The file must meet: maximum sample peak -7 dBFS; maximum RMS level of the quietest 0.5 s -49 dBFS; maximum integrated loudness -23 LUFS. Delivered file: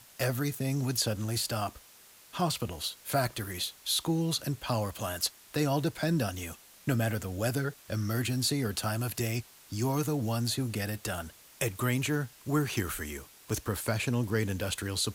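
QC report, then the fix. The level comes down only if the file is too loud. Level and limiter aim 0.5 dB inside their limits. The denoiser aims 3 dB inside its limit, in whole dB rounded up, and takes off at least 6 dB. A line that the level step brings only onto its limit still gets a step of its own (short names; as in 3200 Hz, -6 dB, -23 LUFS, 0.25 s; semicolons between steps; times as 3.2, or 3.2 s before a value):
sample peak -16.0 dBFS: OK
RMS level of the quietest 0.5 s -56 dBFS: OK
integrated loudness -31.5 LUFS: OK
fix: none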